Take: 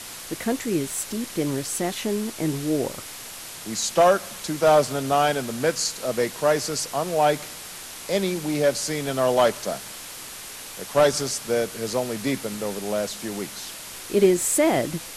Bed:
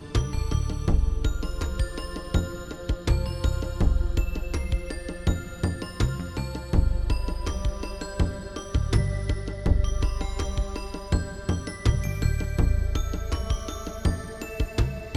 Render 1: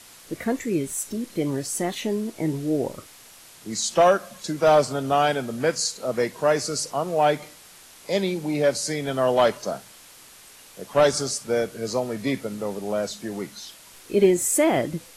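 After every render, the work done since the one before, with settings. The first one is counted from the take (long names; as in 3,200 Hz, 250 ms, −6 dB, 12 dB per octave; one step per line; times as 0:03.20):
noise reduction from a noise print 10 dB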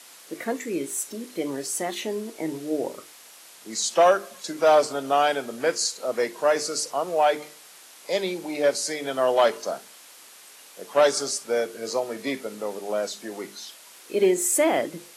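high-pass filter 310 Hz 12 dB per octave
mains-hum notches 50/100/150/200/250/300/350/400/450 Hz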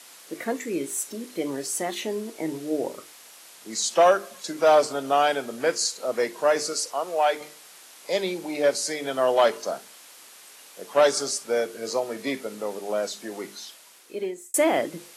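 0:06.73–0:07.41: high-pass filter 470 Hz 6 dB per octave
0:13.57–0:14.54: fade out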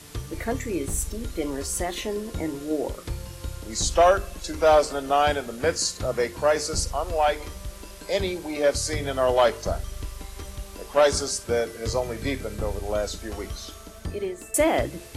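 mix in bed −9.5 dB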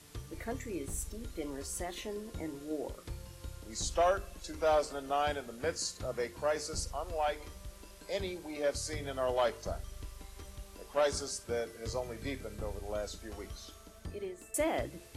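level −11 dB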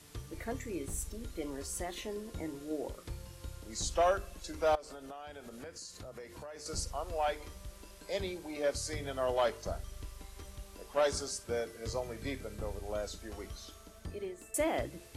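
0:04.75–0:06.66: downward compressor 8 to 1, threshold −43 dBFS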